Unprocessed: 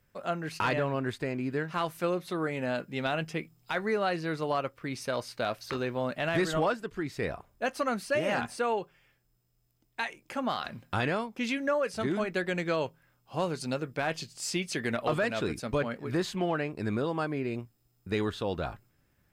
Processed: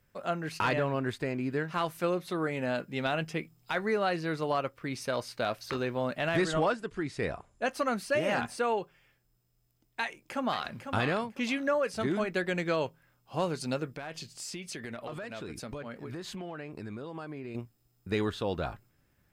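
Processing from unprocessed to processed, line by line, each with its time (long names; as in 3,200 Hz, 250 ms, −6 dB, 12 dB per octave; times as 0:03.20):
0:06.36–0:07.69: bad sample-rate conversion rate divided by 2×, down none, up filtered
0:10.02–0:10.79: delay throw 500 ms, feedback 20%, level −8 dB
0:13.95–0:17.55: downward compressor 5 to 1, threshold −37 dBFS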